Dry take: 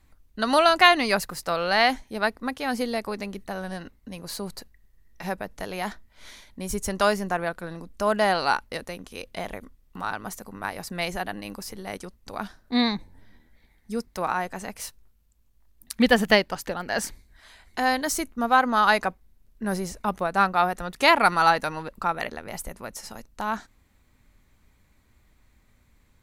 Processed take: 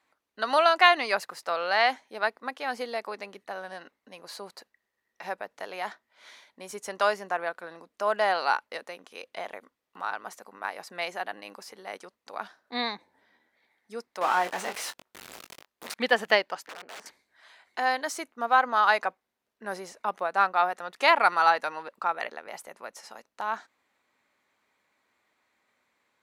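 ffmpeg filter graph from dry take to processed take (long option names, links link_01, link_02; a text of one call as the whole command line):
ffmpeg -i in.wav -filter_complex "[0:a]asettb=1/sr,asplit=3[link_01][link_02][link_03];[link_01]atrim=end=14.214[link_04];[link_02]atrim=start=14.21:end=15.94,asetpts=PTS-STARTPTS,afade=type=in:duration=0.004:curve=qsin,afade=type=out:start_time=1.726:duration=0.004:curve=qsin,aeval=exprs='val(0)+0.5*0.0596*sgn(val(0))':channel_layout=same,asplit=2[link_05][link_06];[link_06]adelay=22,volume=-8dB[link_07];[link_05][link_07]amix=inputs=2:normalize=0,atrim=end_sample=76293[link_08];[link_03]atrim=start=15.936[link_09];[link_04][link_08]acrossfade=duration=0.004:curve1=hsin:curve2=qsin[link_10];[link_10][link_09]acrossfade=duration=0.004:curve1=qsin:curve2=hsin,asettb=1/sr,asplit=3[link_11][link_12][link_13];[link_11]atrim=end=16.664[link_14];[link_12]atrim=start=16.66:end=17.06,asetpts=PTS-STARTPTS,afade=type=in:duration=0.004:curve=qsin,afade=type=out:start_time=0.396:duration=0.004:curve=qsin,lowpass=frequency=1000:poles=1,aeval=exprs='(mod(26.6*val(0)+1,2)-1)/26.6':channel_layout=same,tremolo=f=220:d=0.889[link_15];[link_13]atrim=start=17.056[link_16];[link_14][link_15]acrossfade=duration=0.004:curve1=hsin:curve2=qsin[link_17];[link_17][link_16]acrossfade=duration=0.004:curve1=qsin:curve2=hsin,highpass=530,aemphasis=mode=reproduction:type=50kf,volume=-1dB" out.wav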